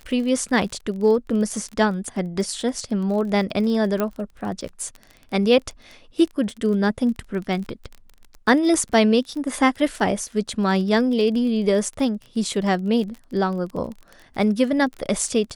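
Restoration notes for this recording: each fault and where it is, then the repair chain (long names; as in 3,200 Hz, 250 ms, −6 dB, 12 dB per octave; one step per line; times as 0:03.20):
surface crackle 26 per second −30 dBFS
0:04.00: click −10 dBFS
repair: click removal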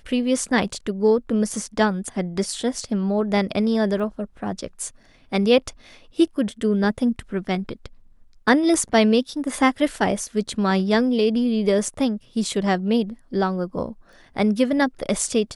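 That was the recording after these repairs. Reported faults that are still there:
0:04.00: click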